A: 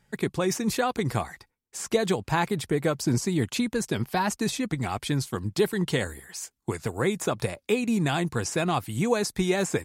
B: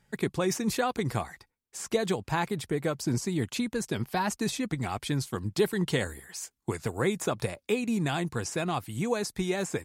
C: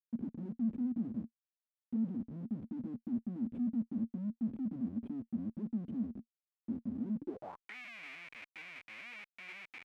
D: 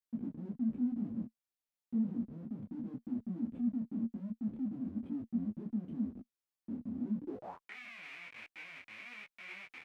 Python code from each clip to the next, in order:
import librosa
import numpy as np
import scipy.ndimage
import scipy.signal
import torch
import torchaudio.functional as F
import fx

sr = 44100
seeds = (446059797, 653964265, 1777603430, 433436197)

y1 = fx.rider(x, sr, range_db=4, speed_s=2.0)
y1 = F.gain(torch.from_numpy(y1), -3.5).numpy()
y2 = fx.formant_cascade(y1, sr, vowel='i')
y2 = fx.schmitt(y2, sr, flips_db=-51.0)
y2 = fx.filter_sweep_bandpass(y2, sr, from_hz=230.0, to_hz=2300.0, start_s=7.18, end_s=7.75, q=7.4)
y2 = F.gain(torch.from_numpy(y2), 10.5).numpy()
y3 = fx.detune_double(y2, sr, cents=33)
y3 = F.gain(torch.from_numpy(y3), 3.5).numpy()